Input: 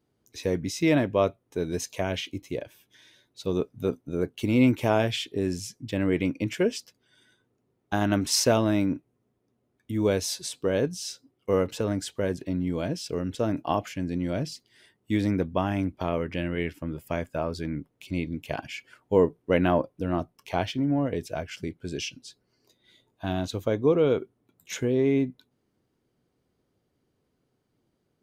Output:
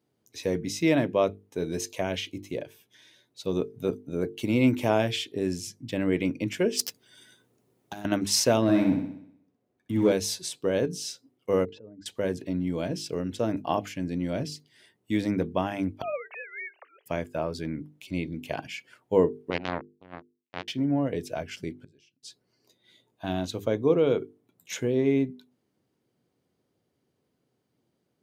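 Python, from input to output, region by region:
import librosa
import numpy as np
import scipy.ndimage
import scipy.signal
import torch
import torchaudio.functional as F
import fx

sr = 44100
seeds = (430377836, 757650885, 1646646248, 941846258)

y = fx.chain(x, sr, fx.high_shelf(hz=5300.0, db=8.5),
    fx.leveller(passes=2),
    fx.over_compress(threshold_db=-29.0, ratio=-0.5), at=(6.77, 8.05))
y = fx.chain(y, sr, fx.leveller(passes=1),
    fx.high_shelf(hz=4600.0, db=-8.0),
    fx.room_flutter(wall_m=10.8, rt60_s=0.68), at=(8.62, 10.12))
y = fx.chain(y, sr, fx.spec_expand(power=1.7),
    fx.level_steps(step_db=22),
    fx.air_absorb(metres=230.0), at=(11.65, 12.06))
y = fx.chain(y, sr, fx.sine_speech(),
    fx.steep_highpass(hz=580.0, slope=48), at=(16.02, 17.06))
y = fx.chain(y, sr, fx.lowpass(hz=3700.0, slope=12),
    fx.power_curve(exponent=3.0), at=(19.5, 20.68))
y = fx.chain(y, sr, fx.high_shelf(hz=9500.0, db=-5.0),
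    fx.gate_flip(shuts_db=-38.0, range_db=-29), at=(21.73, 22.23))
y = scipy.signal.sosfilt(scipy.signal.butter(2, 100.0, 'highpass', fs=sr, output='sos'), y)
y = fx.peak_eq(y, sr, hz=1300.0, db=-2.5, octaves=0.77)
y = fx.hum_notches(y, sr, base_hz=50, count=9)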